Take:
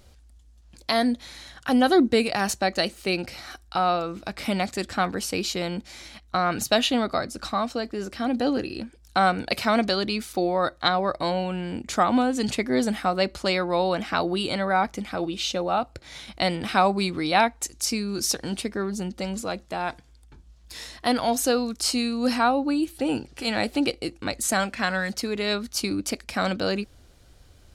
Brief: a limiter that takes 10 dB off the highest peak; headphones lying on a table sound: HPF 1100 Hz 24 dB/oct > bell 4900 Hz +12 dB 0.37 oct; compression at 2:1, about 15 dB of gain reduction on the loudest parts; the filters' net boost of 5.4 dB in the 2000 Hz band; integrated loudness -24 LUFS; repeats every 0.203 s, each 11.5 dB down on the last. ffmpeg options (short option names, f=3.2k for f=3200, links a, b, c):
-af "equalizer=f=2k:t=o:g=7,acompressor=threshold=-42dB:ratio=2,alimiter=level_in=1dB:limit=-24dB:level=0:latency=1,volume=-1dB,highpass=f=1.1k:w=0.5412,highpass=f=1.1k:w=1.3066,equalizer=f=4.9k:t=o:w=0.37:g=12,aecho=1:1:203|406|609:0.266|0.0718|0.0194,volume=13dB"